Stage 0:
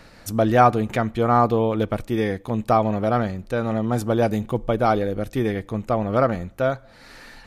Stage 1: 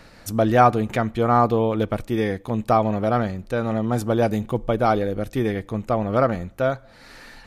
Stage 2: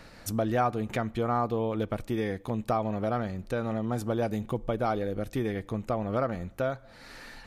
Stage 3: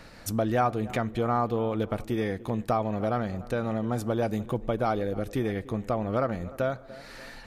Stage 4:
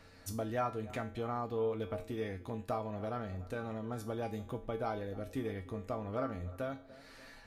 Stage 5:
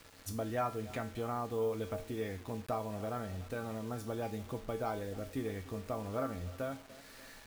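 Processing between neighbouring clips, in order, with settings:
no audible change
compression 2:1, threshold -27 dBFS, peak gain reduction 9.5 dB; trim -2.5 dB
tape echo 296 ms, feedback 54%, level -16.5 dB, low-pass 1.4 kHz; trim +1.5 dB
feedback comb 90 Hz, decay 0.35 s, harmonics odd, mix 80%
bit crusher 9-bit

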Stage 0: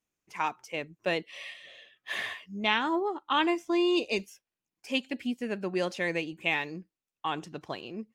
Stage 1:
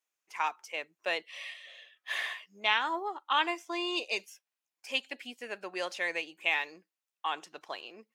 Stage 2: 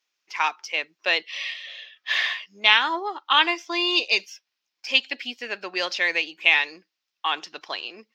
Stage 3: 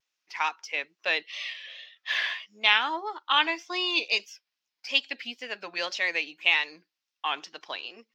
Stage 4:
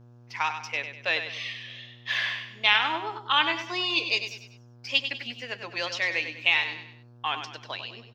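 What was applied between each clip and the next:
high-pass 670 Hz 12 dB/octave
FFT filter 110 Hz 0 dB, 280 Hz +5 dB, 630 Hz +2 dB, 5.3 kHz +13 dB, 9.4 kHz -13 dB, 14 kHz -2 dB; trim +2.5 dB
band-stop 370 Hz, Q 12; wow and flutter 83 cents; trim -4.5 dB
on a send: feedback delay 98 ms, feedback 40%, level -9 dB; on the sum: mains buzz 120 Hz, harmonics 14, -52 dBFS -9 dB/octave

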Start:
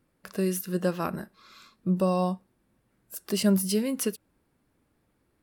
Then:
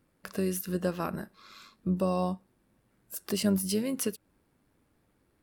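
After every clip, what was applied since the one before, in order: in parallel at +1.5 dB: compression, threshold -33 dBFS, peak gain reduction 15 dB; on the sum: AM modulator 99 Hz, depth 20%; trim -4.5 dB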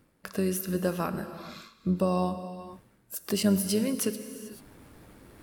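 gated-style reverb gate 460 ms flat, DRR 10.5 dB; reverse; upward compressor, threshold -39 dBFS; reverse; trim +2 dB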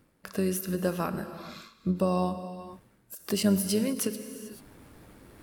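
endings held to a fixed fall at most 220 dB/s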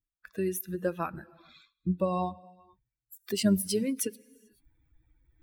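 expander on every frequency bin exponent 2; trim +2 dB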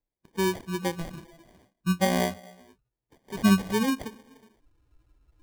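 harmonic-percussive split percussive -13 dB; sample-and-hold 33×; trim +5 dB

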